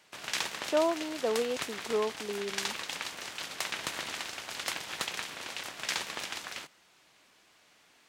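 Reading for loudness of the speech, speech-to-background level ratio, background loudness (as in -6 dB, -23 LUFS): -32.5 LUFS, 3.5 dB, -36.0 LUFS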